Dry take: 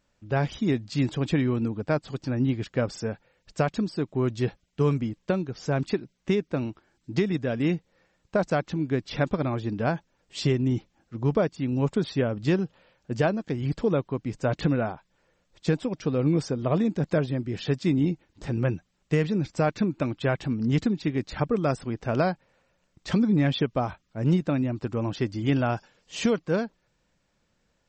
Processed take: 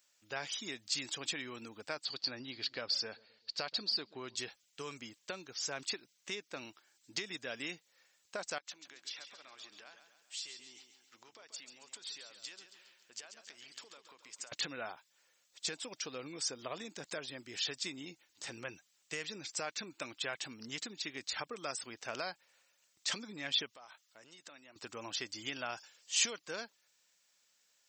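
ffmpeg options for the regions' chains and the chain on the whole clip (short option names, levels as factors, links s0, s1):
-filter_complex "[0:a]asettb=1/sr,asplit=3[s0][s1][s2];[s0]atrim=end=2.054[s3];[s1]atrim=start=2.05:end=4.36,asetpts=PTS-STARTPTS,afade=t=in:d=0.004:c=qsin,afade=t=out:st=2.306:d=0.004:c=qsin,lowpass=f=4500:t=q:w=10,aemphasis=mode=reproduction:type=75fm,asplit=2[s4][s5];[s5]adelay=130,lowpass=f=850:p=1,volume=0.0794,asplit=2[s6][s7];[s7]adelay=130,lowpass=f=850:p=1,volume=0.55,asplit=2[s8][s9];[s9]adelay=130,lowpass=f=850:p=1,volume=0.55,asplit=2[s10][s11];[s11]adelay=130,lowpass=f=850:p=1,volume=0.55[s12];[s4][s6][s8][s10][s12]amix=inputs=5:normalize=0,atrim=end_sample=101871[s13];[s2]atrim=start=4.356[s14];[s3][s13]acrossfade=d=0.004:c1=hsin:c2=qsin[s15];[s15][s14]acrossfade=d=0.004:c1=qsin:c2=hsin,asettb=1/sr,asplit=3[s16][s17][s18];[s16]atrim=end=8.584[s19];[s17]atrim=start=8.58:end=14.52,asetpts=PTS-STARTPTS,afade=t=in:d=0.004:c=qsin,afade=t=out:st=5.936:d=0.004:c=qsin,highpass=f=850:p=1,acompressor=threshold=0.00631:ratio=6:attack=3.2:release=140:knee=1:detection=peak,aecho=1:1:137|274|411|548|685:0.355|0.17|0.0817|0.0392|0.0188,atrim=end_sample=261954[s20];[s18]atrim=start=14.516[s21];[s19][s20]acrossfade=d=0.004:c1=hsin:c2=qsin[s22];[s22][s21]acrossfade=d=0.004:c1=qsin:c2=hsin,asettb=1/sr,asplit=3[s23][s24][s25];[s23]atrim=end=23.724[s26];[s24]atrim=start=23.72:end=24.76,asetpts=PTS-STARTPTS,afade=t=in:d=0.004:c=qsin,afade=t=out:st=1.036:d=0.004:c=qsin,equalizer=f=77:w=0.3:g=-12.5,bandreject=f=2400:w=16,acompressor=threshold=0.00794:ratio=5:attack=3.2:release=140:knee=1:detection=peak[s27];[s25]atrim=start=24.756[s28];[s26][s27]acrossfade=d=0.004:c1=hsin:c2=qsin[s29];[s29][s28]acrossfade=d=0.004:c1=qsin:c2=hsin,equalizer=f=160:w=1.6:g=-3.5,acompressor=threshold=0.0562:ratio=6,aderivative,volume=2.82"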